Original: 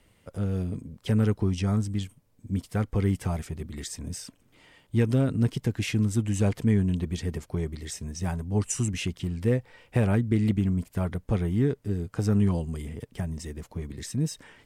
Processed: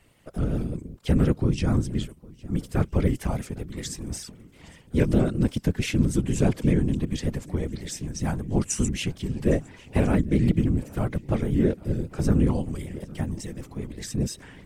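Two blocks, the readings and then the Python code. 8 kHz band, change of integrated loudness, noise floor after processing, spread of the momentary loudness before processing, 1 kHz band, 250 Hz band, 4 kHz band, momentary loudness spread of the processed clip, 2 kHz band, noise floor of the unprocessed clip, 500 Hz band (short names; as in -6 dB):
+2.0 dB, +2.0 dB, -52 dBFS, 12 LU, +2.5 dB, +2.5 dB, +2.5 dB, 12 LU, +2.0 dB, -63 dBFS, +2.5 dB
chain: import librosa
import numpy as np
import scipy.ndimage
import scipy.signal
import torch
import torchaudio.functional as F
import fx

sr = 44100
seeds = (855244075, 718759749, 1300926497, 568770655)

y = fx.echo_swing(x, sr, ms=1346, ratio=1.5, feedback_pct=40, wet_db=-22.5)
y = fx.whisperise(y, sr, seeds[0])
y = fx.vibrato_shape(y, sr, shape='saw_up', rate_hz=5.2, depth_cents=100.0)
y = F.gain(torch.from_numpy(y), 2.0).numpy()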